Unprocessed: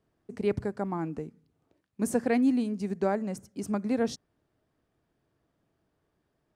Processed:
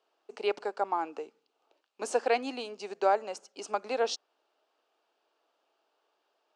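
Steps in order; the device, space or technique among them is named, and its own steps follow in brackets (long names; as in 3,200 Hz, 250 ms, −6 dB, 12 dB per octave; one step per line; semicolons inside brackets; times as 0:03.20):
phone speaker on a table (loudspeaker in its box 440–7,500 Hz, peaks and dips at 840 Hz +6 dB, 1,300 Hz +4 dB, 1,900 Hz −6 dB, 2,800 Hz +8 dB)
parametric band 4,300 Hz +5 dB 0.69 octaves
level +2.5 dB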